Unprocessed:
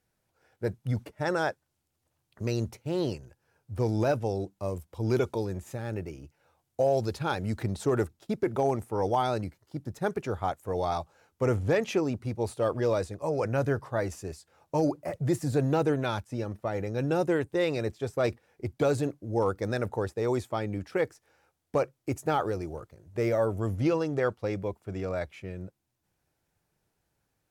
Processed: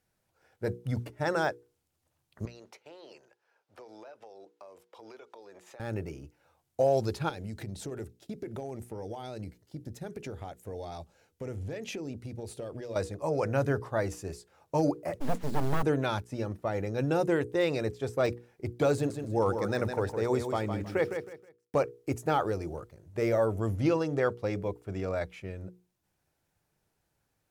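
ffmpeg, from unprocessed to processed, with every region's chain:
-filter_complex "[0:a]asettb=1/sr,asplit=3[a][b][c];[a]atrim=end=2.454[d];[b]atrim=start=2.45:end=5.8,asetpts=PTS-STARTPTS,afade=t=in:d=0.004:c=qsin,afade=t=out:st=3.346:d=0.004:c=qsin,highpass=250,acrossover=split=430 5500:gain=0.158 1 0.224[e][f][g];[e][f][g]amix=inputs=3:normalize=0,acompressor=threshold=-45dB:ratio=16:attack=3.2:release=140:knee=1:detection=peak[h];[c]atrim=start=5.796[i];[d][h]acrossfade=d=0.004:c1=hsin:c2=qsin[j];[j][i]acrossfade=d=0.004:c1=qsin:c2=hsin,asettb=1/sr,asplit=3[k][l][m];[k]atrim=end=7.294[n];[l]atrim=start=7.29:end=12.96,asetpts=PTS-STARTPTS,afade=t=in:d=0.004:c=qsin,afade=t=out:st=5.666:d=0.004:c=qsin,acompressor=threshold=-33dB:ratio=6:attack=3.2:release=140:knee=1:detection=peak,equalizer=f=1.1k:w=1.4:g=-9.5[o];[m]atrim=start=12.956[p];[n][o]acrossfade=d=0.004:c1=hsin:c2=qsin[q];[q][p]acrossfade=d=0.004:c1=qsin:c2=hsin,asettb=1/sr,asplit=3[r][s][t];[r]atrim=end=15.204[u];[s]atrim=start=15.2:end=15.83,asetpts=PTS-STARTPTS,afade=t=in:d=0.004:c=qsin,afade=t=out:st=0.626:d=0.004:c=qsin,aeval=exprs='abs(val(0))':c=same,aemphasis=mode=reproduction:type=75fm,acrusher=bits=6:mode=log:mix=0:aa=0.000001[v];[t]atrim=start=15.826[w];[u][v]acrossfade=d=0.004:c1=hsin:c2=qsin[x];[x][w]acrossfade=d=0.004:c1=qsin:c2=hsin,asettb=1/sr,asplit=3[y][z][aa];[y]atrim=end=18.944[ab];[z]atrim=start=18.94:end=21.75,asetpts=PTS-STARTPTS,afade=t=in:d=0.004:c=qsin,afade=t=out:st=2.806:d=0.004:c=qsin,aeval=exprs='val(0)*gte(abs(val(0)),0.00158)':c=same,aecho=1:1:159|318|477:0.422|0.114|0.0307,atrim=end_sample=123921[ac];[aa]atrim=start=21.746[ad];[ab][ac]acrossfade=d=0.004:c1=hsin:c2=qsin[ae];[ae][ad]acrossfade=d=0.004:c1=qsin:c2=hsin,deesser=0.85,bandreject=f=60:t=h:w=6,bandreject=f=120:t=h:w=6,bandreject=f=180:t=h:w=6,bandreject=f=240:t=h:w=6,bandreject=f=300:t=h:w=6,bandreject=f=360:t=h:w=6,bandreject=f=420:t=h:w=6,bandreject=f=480:t=h:w=6"

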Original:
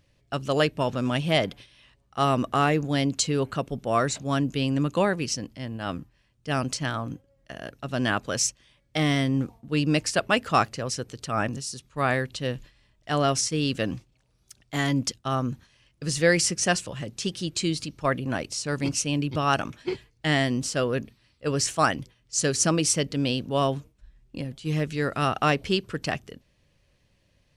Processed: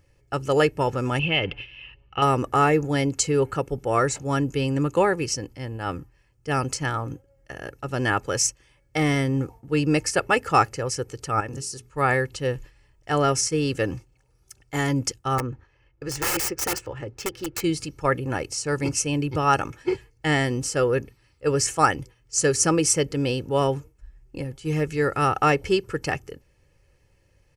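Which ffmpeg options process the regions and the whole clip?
-filter_complex "[0:a]asettb=1/sr,asplit=3[a][b][c];[a]atrim=end=1.194[d];[b]atrim=start=1.19:end=2.22,asetpts=PTS-STARTPTS,afade=t=in:d=0.004:c=qsin,afade=t=out:st=1.026:d=0.004:c=qsin,lowshelf=f=220:g=6,acompressor=threshold=-25dB:ratio=3:attack=3.2:release=140:knee=1:detection=peak,lowpass=f=2.8k:t=q:w=12[e];[c]atrim=start=2.216[f];[d][e]acrossfade=d=0.004:c1=hsin:c2=qsin[g];[g][f]acrossfade=d=0.004:c1=qsin:c2=hsin,asettb=1/sr,asplit=3[h][i][j];[h]atrim=end=11.404[k];[i]atrim=start=11.4:end=11.91,asetpts=PTS-STARTPTS,afade=t=in:d=0.004:c=qsin,afade=t=out:st=0.506:d=0.004:c=qsin,bandreject=f=60:t=h:w=6,bandreject=f=120:t=h:w=6,bandreject=f=180:t=h:w=6,bandreject=f=240:t=h:w=6,bandreject=f=300:t=h:w=6,bandreject=f=360:t=h:w=6,bandreject=f=420:t=h:w=6,acompressor=threshold=-29dB:ratio=10:attack=3.2:release=140:knee=1:detection=peak[l];[j]atrim=start=11.906[m];[k][l]acrossfade=d=0.004:c1=hsin:c2=qsin[n];[n][m]acrossfade=d=0.004:c1=qsin:c2=hsin,asettb=1/sr,asplit=3[o][p][q];[o]atrim=end=15.384[r];[p]atrim=start=15.38:end=17.64,asetpts=PTS-STARTPTS,afade=t=in:d=0.004:c=qsin,afade=t=out:st=2.256:d=0.004:c=qsin,equalizer=f=170:w=3.3:g=-12.5,adynamicsmooth=sensitivity=4:basefreq=2.5k,aeval=exprs='(mod(11.9*val(0)+1,2)-1)/11.9':c=same[s];[q]atrim=start=17.636[t];[r][s]acrossfade=d=0.004:c1=hsin:c2=qsin[u];[u][t]acrossfade=d=0.004:c1=qsin:c2=hsin,equalizer=f=3.7k:t=o:w=0.54:g=-12.5,aecho=1:1:2.3:0.59,volume=2.5dB"

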